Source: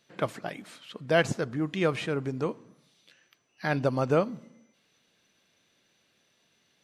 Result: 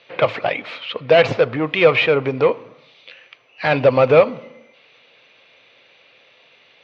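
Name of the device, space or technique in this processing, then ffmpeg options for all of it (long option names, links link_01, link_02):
overdrive pedal into a guitar cabinet: -filter_complex "[0:a]asplit=2[link_01][link_02];[link_02]highpass=frequency=720:poles=1,volume=20dB,asoftclip=type=tanh:threshold=-11dB[link_03];[link_01][link_03]amix=inputs=2:normalize=0,lowpass=frequency=3400:poles=1,volume=-6dB,highpass=100,equalizer=frequency=110:width_type=q:width=4:gain=9,equalizer=frequency=200:width_type=q:width=4:gain=-9,equalizer=frequency=330:width_type=q:width=4:gain=-5,equalizer=frequency=510:width_type=q:width=4:gain=7,equalizer=frequency=1600:width_type=q:width=4:gain=-6,equalizer=frequency=2400:width_type=q:width=4:gain=6,lowpass=frequency=4000:width=0.5412,lowpass=frequency=4000:width=1.3066,volume=5.5dB"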